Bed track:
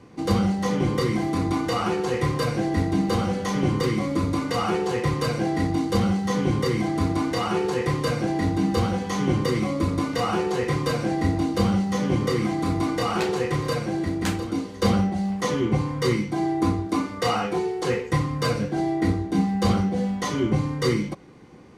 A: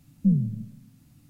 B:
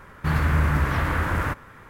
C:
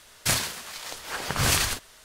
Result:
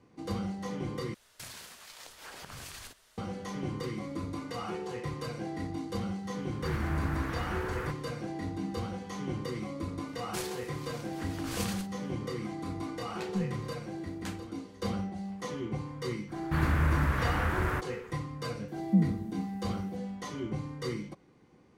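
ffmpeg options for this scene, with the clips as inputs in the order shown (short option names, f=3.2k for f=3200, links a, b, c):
-filter_complex "[3:a]asplit=2[a][b];[2:a]asplit=2[c][d];[1:a]asplit=2[e][f];[0:a]volume=-13dB[g];[a]acompressor=threshold=-30dB:ratio=6:attack=3.2:release=140:knee=1:detection=peak[h];[f]highpass=f=170:w=0.5412,highpass=f=170:w=1.3066[i];[g]asplit=2[j][k];[j]atrim=end=1.144[l];[h]atrim=end=2.04,asetpts=PTS-STARTPTS,volume=-11.5dB[m];[k]atrim=start=3.176[n];[c]atrim=end=1.89,asetpts=PTS-STARTPTS,volume=-12dB,afade=t=in:d=0.004:c=hsin,afade=t=out:st=1.886:d=0.004:c=hsin,adelay=6380[o];[b]atrim=end=2.04,asetpts=PTS-STARTPTS,volume=-15.5dB,afade=t=in:d=0.004:c=hsin,afade=t=out:st=2.036:d=0.004:c=hsin,adelay=10080[p];[e]atrim=end=1.29,asetpts=PTS-STARTPTS,volume=-12dB,afade=t=in:d=0.004:c=hsin,afade=t=out:st=1.286:d=0.004:c=hsin,adelay=13100[q];[d]atrim=end=1.89,asetpts=PTS-STARTPTS,volume=-6dB,afade=t=in:d=0.05,afade=t=out:st=1.84:d=0.05,adelay=16270[r];[i]atrim=end=1.29,asetpts=PTS-STARTPTS,volume=-1.5dB,afade=t=in:d=0.004:c=hsin,afade=t=out:st=1.286:d=0.004:c=hsin,adelay=18680[s];[l][m]acrossfade=d=0.004:c1=hsin:c2=hsin[t];[t][n]acrossfade=d=0.004:c1=hsin:c2=hsin[u];[u][o][p][q][r][s]amix=inputs=6:normalize=0"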